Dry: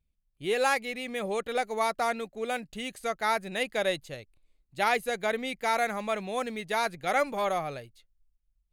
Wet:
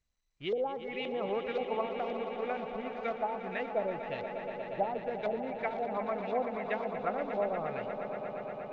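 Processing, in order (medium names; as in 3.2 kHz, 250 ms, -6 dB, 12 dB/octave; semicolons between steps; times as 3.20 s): low-pass that closes with the level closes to 440 Hz, closed at -24 dBFS; in parallel at -8.5 dB: companded quantiser 4-bit; on the sum: LFO low-pass saw up 1.9 Hz 550–3700 Hz; on a send: echo with a slow build-up 119 ms, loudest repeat 5, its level -11.5 dB; on the sum: trim -7.5 dB; SBC 192 kbps 16 kHz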